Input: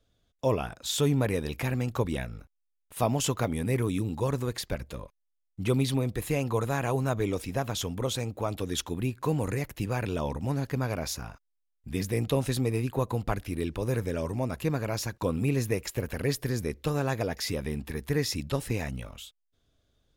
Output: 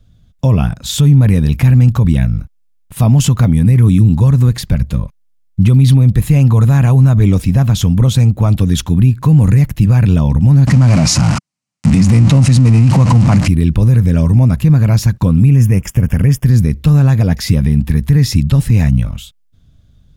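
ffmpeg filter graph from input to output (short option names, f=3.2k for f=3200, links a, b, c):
-filter_complex "[0:a]asettb=1/sr,asplit=3[a][b][c];[a]atrim=end=10.674[d];[b]atrim=start=10.67:end=13.48,asetpts=PTS-STARTPTS,afade=t=in:d=0.004:c=qsin,afade=t=out:st=2.806:d=0.004:c=qsin,aeval=exprs='val(0)+0.5*0.0376*sgn(val(0))':c=same,acontrast=82,highpass=150,equalizer=f=430:t=q:w=4:g=-9,equalizer=f=1.6k:t=q:w=4:g=-6,equalizer=f=3.5k:t=q:w=4:g=-8,lowpass=f=8.4k:w=0.5412,lowpass=f=8.4k:w=1.3066[e];[c]atrim=start=13.476[f];[d][e]acrossfade=d=0.004:c1=hsin:c2=qsin[g];[g][f]acrossfade=d=0.004:c1=qsin:c2=hsin,asettb=1/sr,asplit=3[h][i][j];[h]atrim=end=15.504[k];[i]atrim=start=15.5:end=16.45,asetpts=PTS-STARTPTS,afade=t=in:d=0.004:c=qsin,afade=t=out:st=0.946:d=0.004:c=qsin,aeval=exprs='sgn(val(0))*max(abs(val(0))-0.00158,0)':c=same,acompressor=mode=upward:threshold=-36dB:ratio=2.5:attack=3.2:release=140:knee=2.83:detection=peak,asuperstop=centerf=4100:order=4:qfactor=2.5[l];[j]atrim=start=16.446[m];[k][l]acrossfade=d=0.004:c1=hsin:c2=qsin[n];[n][m]acrossfade=d=0.004:c1=qsin:c2=hsin,lowshelf=f=260:t=q:w=1.5:g=13.5,alimiter=level_in=11.5dB:limit=-1dB:release=50:level=0:latency=1,volume=-1dB"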